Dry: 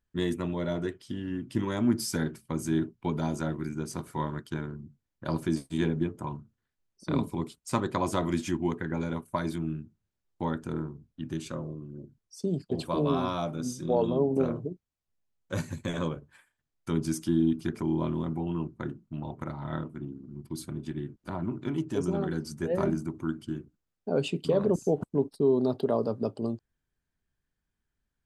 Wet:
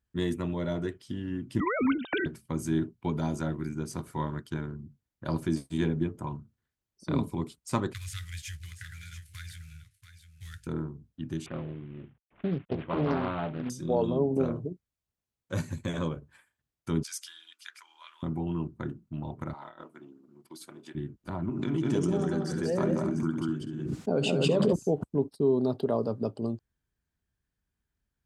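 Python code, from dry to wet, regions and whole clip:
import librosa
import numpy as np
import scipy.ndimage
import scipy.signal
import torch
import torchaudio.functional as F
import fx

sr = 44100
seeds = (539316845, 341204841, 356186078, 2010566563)

y = fx.chain(x, sr, fx.sine_speech(),
    fx.spectral_comp(ratio=2.0), at=(1.6, 2.26))
y = fx.chain(y, sr, fx.cvsd(bps=64000),
    fx.cheby2_bandstop(low_hz=190.0, high_hz=990.0, order=4, stop_db=40),
    fx.echo_single(ms=686, db=-11.0), at=(7.93, 10.67))
y = fx.chain(y, sr, fx.cvsd(bps=16000),
    fx.doppler_dist(depth_ms=0.58), at=(11.46, 13.7))
y = fx.chain(y, sr, fx.highpass(hz=1400.0, slope=24),
    fx.dynamic_eq(hz=4300.0, q=0.9, threshold_db=-55.0, ratio=4.0, max_db=5), at=(17.03, 18.23))
y = fx.chain(y, sr, fx.highpass(hz=540.0, slope=12),
    fx.over_compress(threshold_db=-44.0, ratio=-0.5), at=(19.53, 20.95))
y = fx.chain(y, sr, fx.cheby1_bandpass(low_hz=150.0, high_hz=8200.0, order=2),
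    fx.echo_multitap(ms=(67, 182, 253), db=(-16.5, -4.5, -9.0)),
    fx.pre_swell(db_per_s=28.0), at=(21.49, 24.73))
y = scipy.signal.sosfilt(scipy.signal.butter(2, 50.0, 'highpass', fs=sr, output='sos'), y)
y = fx.low_shelf(y, sr, hz=84.0, db=9.0)
y = F.gain(torch.from_numpy(y), -1.5).numpy()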